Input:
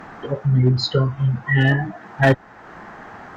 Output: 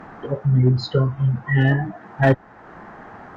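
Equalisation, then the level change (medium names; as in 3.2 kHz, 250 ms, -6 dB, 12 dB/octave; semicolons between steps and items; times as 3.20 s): treble shelf 2.1 kHz -9.5 dB; 0.0 dB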